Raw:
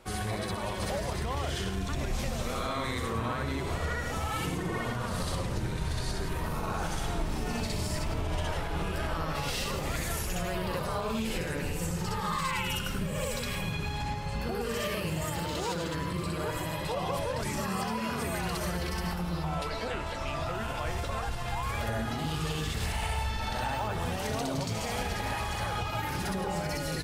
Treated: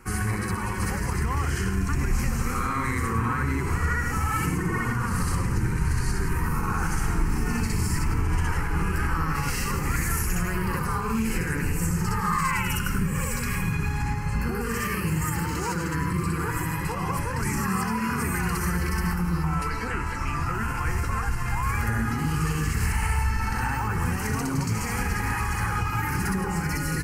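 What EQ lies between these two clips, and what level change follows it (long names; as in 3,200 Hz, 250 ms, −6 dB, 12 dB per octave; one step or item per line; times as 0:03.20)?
phaser with its sweep stopped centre 1,500 Hz, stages 4
+8.5 dB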